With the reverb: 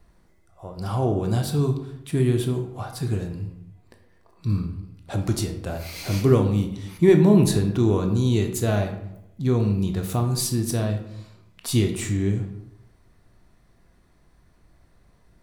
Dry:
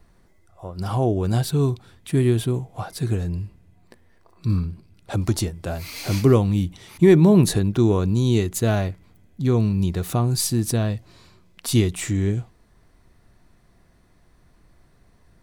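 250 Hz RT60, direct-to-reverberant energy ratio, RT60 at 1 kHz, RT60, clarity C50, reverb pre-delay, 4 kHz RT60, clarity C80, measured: 0.90 s, 5.0 dB, 0.80 s, 0.85 s, 8.5 dB, 15 ms, 0.50 s, 11.0 dB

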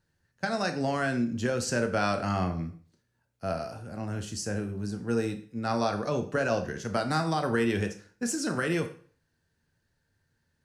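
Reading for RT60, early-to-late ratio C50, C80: 0.45 s, 11.5 dB, 15.5 dB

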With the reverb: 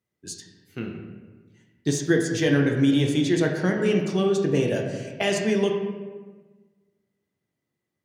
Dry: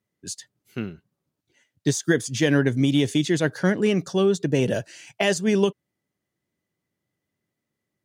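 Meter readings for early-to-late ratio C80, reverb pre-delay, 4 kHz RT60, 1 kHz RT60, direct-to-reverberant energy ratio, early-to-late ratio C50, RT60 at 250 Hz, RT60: 6.0 dB, 4 ms, 0.85 s, 1.3 s, 1.0 dB, 4.5 dB, 1.6 s, 1.4 s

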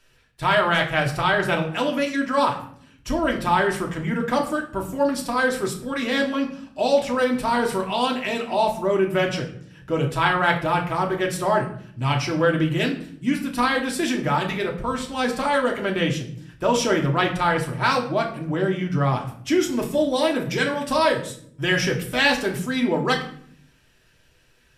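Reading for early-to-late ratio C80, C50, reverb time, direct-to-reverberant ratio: 13.5 dB, 10.0 dB, 0.65 s, 0.5 dB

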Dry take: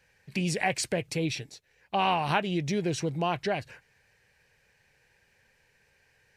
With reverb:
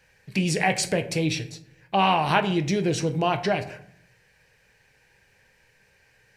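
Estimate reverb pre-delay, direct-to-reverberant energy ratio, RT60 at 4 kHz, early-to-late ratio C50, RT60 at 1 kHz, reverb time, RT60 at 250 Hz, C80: 6 ms, 8.0 dB, 0.35 s, 14.0 dB, 0.60 s, 0.65 s, 0.90 s, 16.5 dB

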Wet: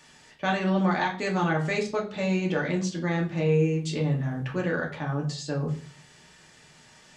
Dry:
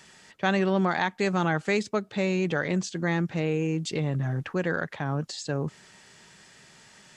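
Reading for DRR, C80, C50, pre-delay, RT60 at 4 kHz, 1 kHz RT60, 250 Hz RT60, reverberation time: -1.5 dB, 15.0 dB, 10.0 dB, 3 ms, 0.35 s, 0.40 s, 0.50 s, 0.45 s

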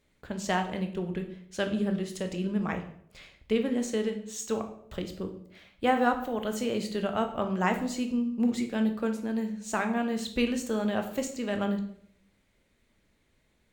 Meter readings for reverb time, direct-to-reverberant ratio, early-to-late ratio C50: 0.65 s, 5.5 dB, 10.0 dB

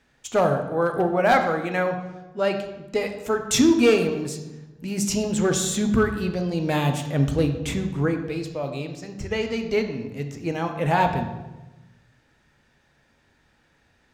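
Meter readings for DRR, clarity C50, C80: 5.0 dB, 8.0 dB, 10.0 dB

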